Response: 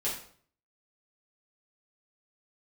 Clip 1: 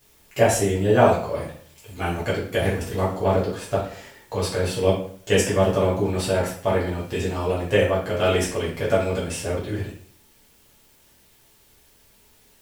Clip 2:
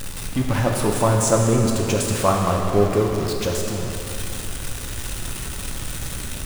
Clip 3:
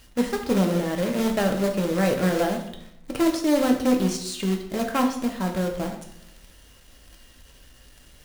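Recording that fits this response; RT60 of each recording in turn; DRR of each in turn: 1; 0.55, 2.8, 0.75 s; -8.5, 0.0, 2.0 dB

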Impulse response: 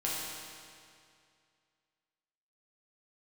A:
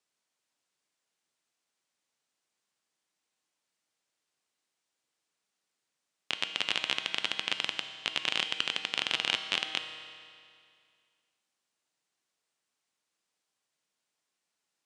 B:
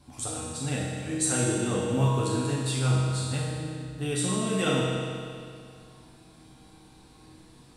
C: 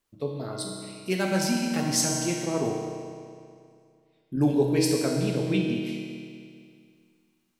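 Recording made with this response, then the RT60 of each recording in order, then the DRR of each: B; 2.3, 2.3, 2.3 s; 7.0, -7.0, -1.5 dB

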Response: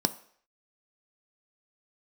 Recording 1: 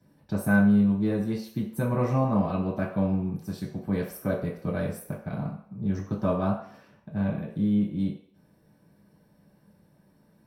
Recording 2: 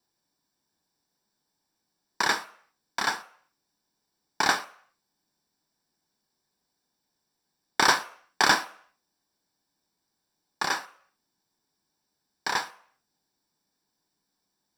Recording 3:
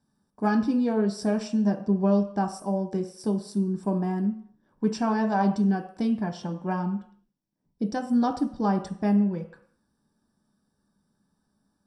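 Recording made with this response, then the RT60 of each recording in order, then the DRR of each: 2; 0.60, 0.60, 0.60 s; -6.5, 11.0, 3.5 dB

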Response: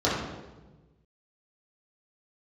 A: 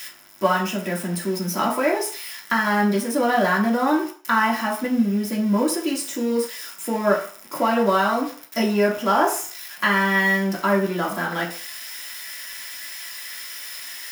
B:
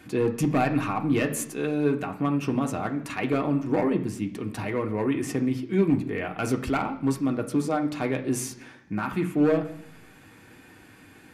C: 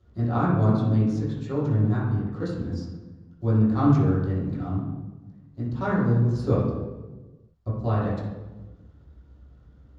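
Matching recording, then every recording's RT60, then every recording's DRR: C; 0.45, 0.70, 1.2 s; -3.5, 2.5, -9.5 dB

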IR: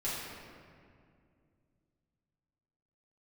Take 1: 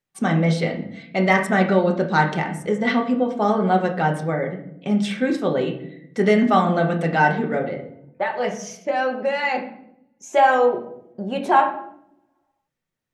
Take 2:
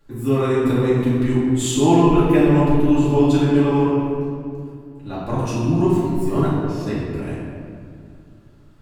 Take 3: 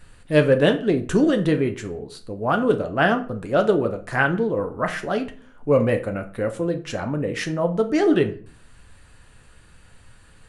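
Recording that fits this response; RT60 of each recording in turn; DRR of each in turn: 2; 0.75, 2.3, 0.40 s; 2.0, -10.0, 5.5 dB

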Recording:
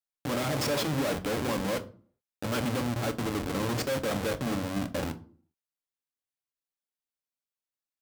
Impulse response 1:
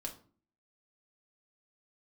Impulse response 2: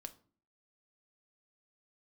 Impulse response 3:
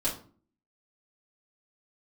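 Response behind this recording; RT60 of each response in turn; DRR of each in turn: 2; 0.45, 0.45, 0.45 s; 0.5, 7.5, -8.0 dB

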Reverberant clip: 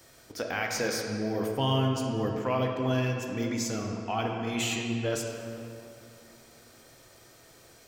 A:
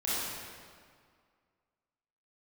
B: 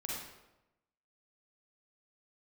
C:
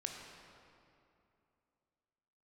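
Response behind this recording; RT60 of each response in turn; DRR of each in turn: C; 2.0, 0.95, 2.7 s; -10.0, -4.5, 1.0 dB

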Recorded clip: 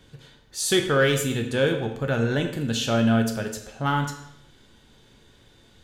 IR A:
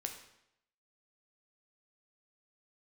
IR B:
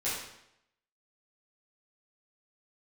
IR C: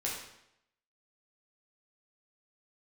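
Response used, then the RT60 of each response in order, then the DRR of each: A; 0.80, 0.80, 0.80 s; 3.5, -12.0, -5.0 dB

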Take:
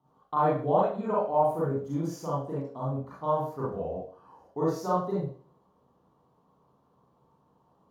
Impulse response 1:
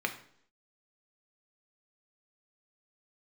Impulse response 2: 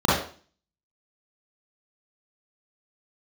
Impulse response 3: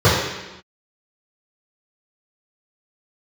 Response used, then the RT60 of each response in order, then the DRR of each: 2; 0.65 s, 0.40 s, not exponential; 4.5, -8.5, -14.0 dB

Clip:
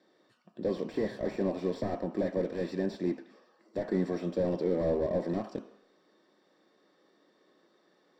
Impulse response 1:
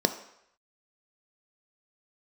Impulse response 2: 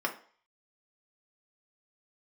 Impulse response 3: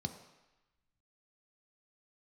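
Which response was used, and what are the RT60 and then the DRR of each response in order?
1; 0.75, 0.45, 1.0 s; 8.0, 0.5, 6.0 dB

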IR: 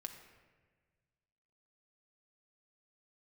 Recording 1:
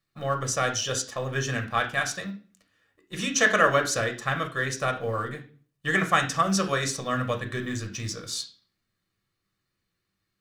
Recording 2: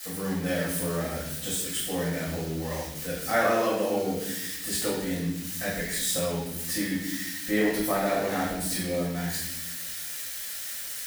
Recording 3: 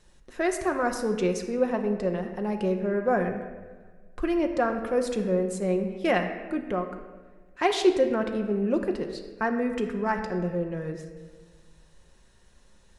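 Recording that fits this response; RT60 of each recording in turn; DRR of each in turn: 3; 0.40, 0.90, 1.5 s; 3.5, -11.0, 4.0 dB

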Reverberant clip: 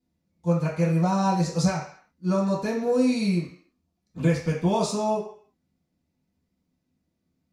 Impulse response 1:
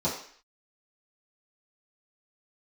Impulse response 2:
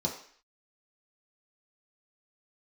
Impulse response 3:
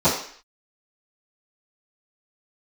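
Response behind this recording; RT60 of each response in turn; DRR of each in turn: 1; 0.55, 0.55, 0.55 s; -10.0, -2.0, -19.5 dB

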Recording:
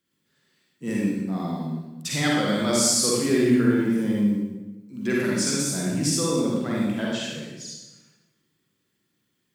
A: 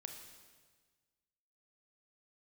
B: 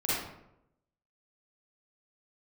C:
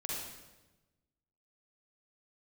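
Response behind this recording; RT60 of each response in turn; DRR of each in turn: C; 1.5, 0.80, 1.1 s; 4.0, -9.5, -5.0 dB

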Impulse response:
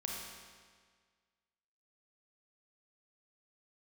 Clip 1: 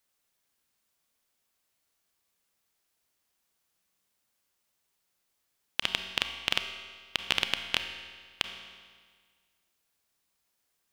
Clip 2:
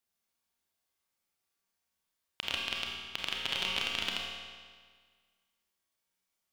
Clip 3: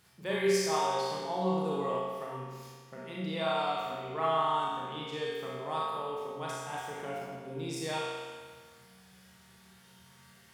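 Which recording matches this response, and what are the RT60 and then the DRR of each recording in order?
2; 1.7, 1.7, 1.7 s; 7.0, -2.0, -7.0 dB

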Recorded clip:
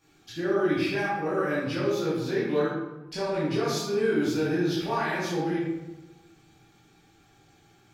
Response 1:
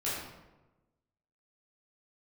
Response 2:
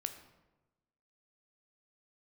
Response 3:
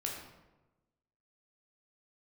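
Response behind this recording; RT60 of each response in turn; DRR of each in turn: 1; 1.1, 1.1, 1.1 s; -10.0, 7.0, -1.5 dB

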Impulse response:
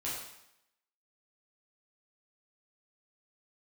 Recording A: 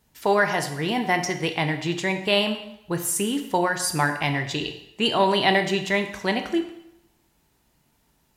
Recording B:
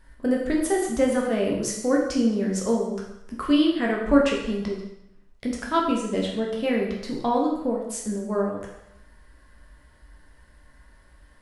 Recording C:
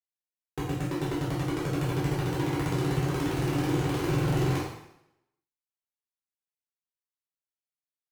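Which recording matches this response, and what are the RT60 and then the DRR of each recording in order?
C; 0.80, 0.80, 0.80 s; 6.0, -2.0, -8.0 dB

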